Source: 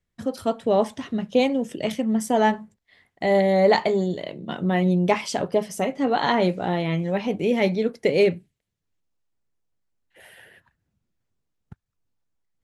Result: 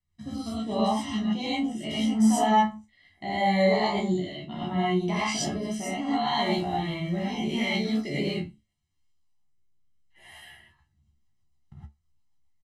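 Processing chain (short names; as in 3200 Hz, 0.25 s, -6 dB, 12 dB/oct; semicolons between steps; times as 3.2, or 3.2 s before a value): 6.26–8.27 block floating point 7-bit; Bessel low-pass 6700 Hz, order 2; high shelf 4500 Hz +6 dB; notch 1800 Hz, Q 17; comb 1 ms, depth 87%; limiter -15 dBFS, peak gain reduction 10 dB; resonator 72 Hz, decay 0.19 s, harmonics all, mix 100%; rotary speaker horn 0.75 Hz, later 7.5 Hz, at 10.32; non-linear reverb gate 0.14 s rising, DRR -7.5 dB; gain -2 dB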